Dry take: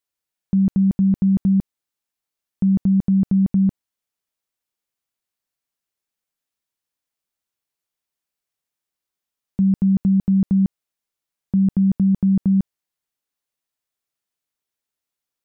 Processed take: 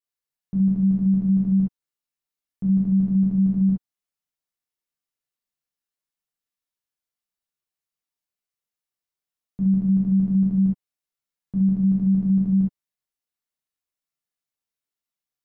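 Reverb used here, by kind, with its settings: non-linear reverb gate 90 ms flat, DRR -5.5 dB; gain -12.5 dB

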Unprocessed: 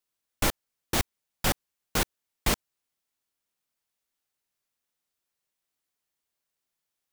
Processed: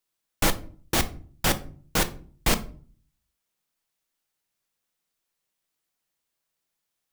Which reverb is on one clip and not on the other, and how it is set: shoebox room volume 360 m³, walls furnished, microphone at 0.65 m; gain +2.5 dB

